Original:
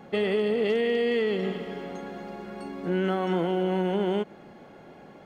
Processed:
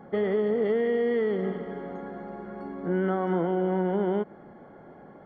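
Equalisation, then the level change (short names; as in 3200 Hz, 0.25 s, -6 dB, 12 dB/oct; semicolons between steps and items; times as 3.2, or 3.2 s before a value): polynomial smoothing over 41 samples; 0.0 dB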